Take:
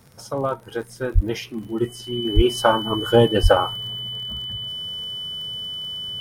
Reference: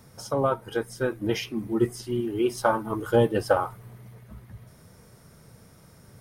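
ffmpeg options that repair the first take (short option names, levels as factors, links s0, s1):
-filter_complex "[0:a]adeclick=t=4,bandreject=f=3000:w=30,asplit=3[s0][s1][s2];[s0]afade=t=out:st=1.14:d=0.02[s3];[s1]highpass=f=140:w=0.5412,highpass=f=140:w=1.3066,afade=t=in:st=1.14:d=0.02,afade=t=out:st=1.26:d=0.02[s4];[s2]afade=t=in:st=1.26:d=0.02[s5];[s3][s4][s5]amix=inputs=3:normalize=0,asplit=3[s6][s7][s8];[s6]afade=t=out:st=2.35:d=0.02[s9];[s7]highpass=f=140:w=0.5412,highpass=f=140:w=1.3066,afade=t=in:st=2.35:d=0.02,afade=t=out:st=2.47:d=0.02[s10];[s8]afade=t=in:st=2.47:d=0.02[s11];[s9][s10][s11]amix=inputs=3:normalize=0,asplit=3[s12][s13][s14];[s12]afade=t=out:st=3.42:d=0.02[s15];[s13]highpass=f=140:w=0.5412,highpass=f=140:w=1.3066,afade=t=in:st=3.42:d=0.02,afade=t=out:st=3.54:d=0.02[s16];[s14]afade=t=in:st=3.54:d=0.02[s17];[s15][s16][s17]amix=inputs=3:normalize=0,asetnsamples=n=441:p=0,asendcmd='2.25 volume volume -5.5dB',volume=1"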